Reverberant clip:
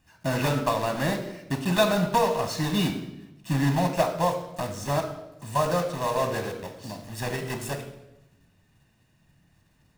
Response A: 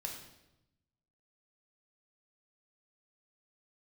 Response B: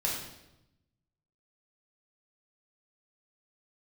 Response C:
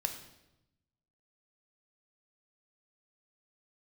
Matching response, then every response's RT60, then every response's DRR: C; 0.90 s, 0.90 s, 0.90 s; 1.0 dB, -3.5 dB, 5.5 dB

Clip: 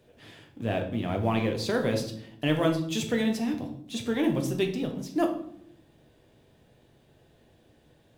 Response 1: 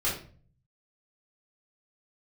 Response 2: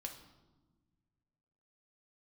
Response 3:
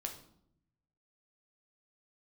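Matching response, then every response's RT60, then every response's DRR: 3; 0.45 s, 1.3 s, 0.70 s; -7.5 dB, 2.5 dB, 2.5 dB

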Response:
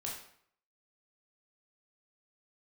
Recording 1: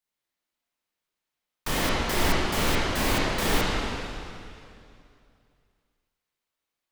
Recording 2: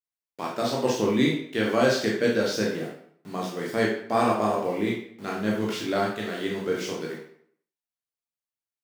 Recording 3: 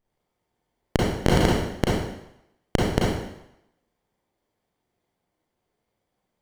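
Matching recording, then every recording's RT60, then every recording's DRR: 2; 2.5 s, 0.65 s, 0.80 s; -7.0 dB, -3.5 dB, -5.0 dB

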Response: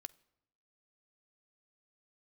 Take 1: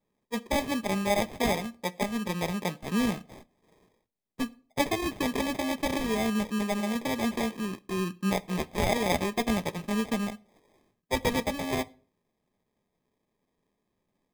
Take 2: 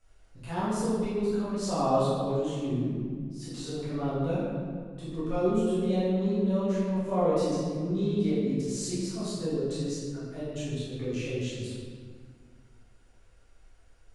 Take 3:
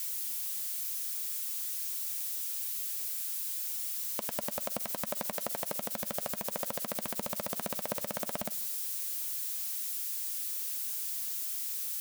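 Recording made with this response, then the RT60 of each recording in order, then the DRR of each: 3; no single decay rate, 1.8 s, 0.80 s; 11.5 dB, -11.5 dB, 12.5 dB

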